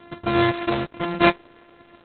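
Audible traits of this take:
a buzz of ramps at a fixed pitch in blocks of 128 samples
Opus

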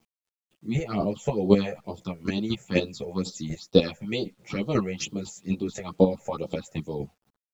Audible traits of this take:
chopped level 4 Hz, depth 65%, duty 15%
phaser sweep stages 6, 2.2 Hz, lowest notch 270–2,000 Hz
a quantiser's noise floor 12 bits, dither none
a shimmering, thickened sound

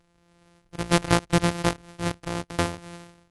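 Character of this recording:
a buzz of ramps at a fixed pitch in blocks of 256 samples
AC-3

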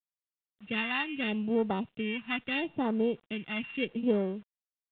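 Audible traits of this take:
a buzz of ramps at a fixed pitch in blocks of 16 samples
phaser sweep stages 2, 0.77 Hz, lowest notch 490–2,500 Hz
a quantiser's noise floor 10 bits, dither none
mu-law

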